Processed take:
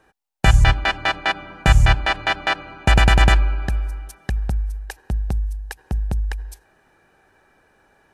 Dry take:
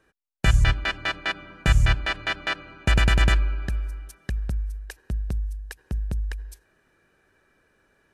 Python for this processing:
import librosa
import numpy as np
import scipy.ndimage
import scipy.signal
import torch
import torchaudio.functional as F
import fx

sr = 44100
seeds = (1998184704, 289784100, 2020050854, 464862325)

y = fx.peak_eq(x, sr, hz=810.0, db=11.0, octaves=0.46)
y = y * librosa.db_to_amplitude(5.0)